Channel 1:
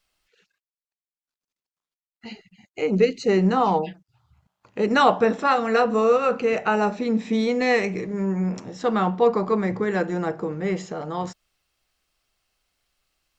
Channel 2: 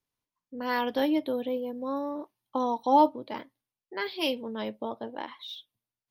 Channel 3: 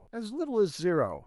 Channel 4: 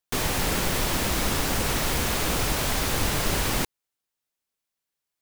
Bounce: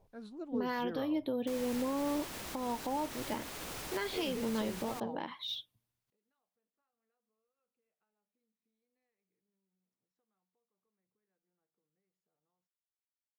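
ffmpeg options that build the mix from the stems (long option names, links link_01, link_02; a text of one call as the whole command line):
ffmpeg -i stem1.wav -i stem2.wav -i stem3.wav -i stem4.wav -filter_complex "[0:a]acompressor=threshold=-27dB:ratio=12,adelay=1350,volume=-10dB[link_01];[1:a]equalizer=frequency=65:width=0.36:gain=10.5,acompressor=threshold=-29dB:ratio=10,volume=2dB,asplit=2[link_02][link_03];[2:a]highshelf=frequency=6000:gain=-10.5,volume=-11.5dB[link_04];[3:a]lowshelf=frequency=120:gain=-10.5,alimiter=limit=-18.5dB:level=0:latency=1:release=128,adelay=1350,volume=-14dB[link_05];[link_03]apad=whole_len=649967[link_06];[link_01][link_06]sidechaingate=range=-47dB:threshold=-40dB:ratio=16:detection=peak[link_07];[link_07][link_02][link_04][link_05]amix=inputs=4:normalize=0,alimiter=level_in=1.5dB:limit=-24dB:level=0:latency=1:release=252,volume=-1.5dB" out.wav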